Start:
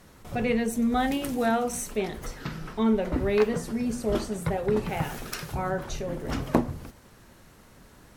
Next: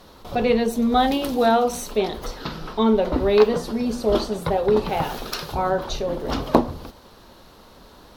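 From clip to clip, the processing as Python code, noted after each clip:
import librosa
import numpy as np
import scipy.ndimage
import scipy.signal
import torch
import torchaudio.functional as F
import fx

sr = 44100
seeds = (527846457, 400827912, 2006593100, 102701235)

y = fx.graphic_eq(x, sr, hz=(125, 500, 1000, 2000, 4000, 8000), db=(-7, 3, 5, -7, 10, -9))
y = y * 10.0 ** (5.0 / 20.0)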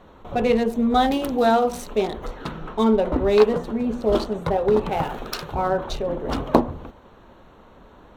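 y = fx.wiener(x, sr, points=9)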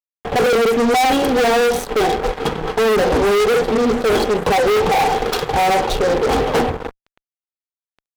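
y = fx.wow_flutter(x, sr, seeds[0], rate_hz=2.1, depth_cents=28.0)
y = fx.small_body(y, sr, hz=(460.0, 770.0, 3300.0), ring_ms=50, db=15)
y = fx.fuzz(y, sr, gain_db=25.0, gate_db=-33.0)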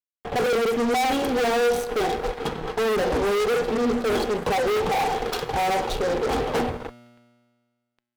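y = fx.comb_fb(x, sr, f0_hz=120.0, decay_s=1.7, harmonics='all', damping=0.0, mix_pct=60)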